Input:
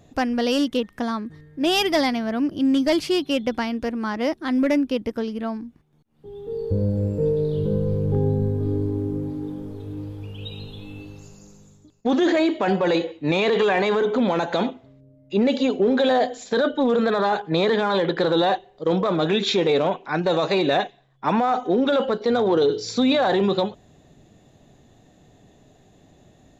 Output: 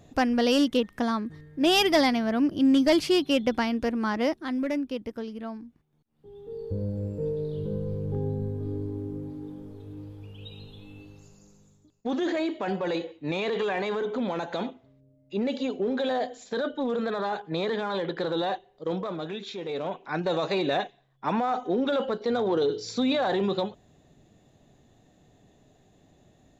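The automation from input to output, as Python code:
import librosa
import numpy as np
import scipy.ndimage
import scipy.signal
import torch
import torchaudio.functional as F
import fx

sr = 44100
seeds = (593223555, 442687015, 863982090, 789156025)

y = fx.gain(x, sr, db=fx.line((4.19, -1.0), (4.59, -8.5), (18.9, -8.5), (19.53, -17.0), (20.07, -6.0)))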